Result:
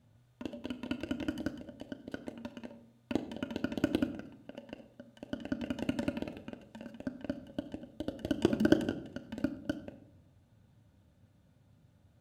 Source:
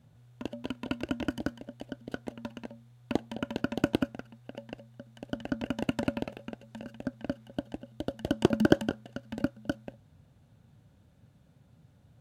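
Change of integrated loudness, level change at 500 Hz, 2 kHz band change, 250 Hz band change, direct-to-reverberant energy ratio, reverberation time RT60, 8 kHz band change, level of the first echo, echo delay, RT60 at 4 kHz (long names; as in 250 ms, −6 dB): −3.5 dB, −4.0 dB, −4.5 dB, −2.5 dB, 7.0 dB, 0.80 s, −4.0 dB, no echo audible, no echo audible, 0.45 s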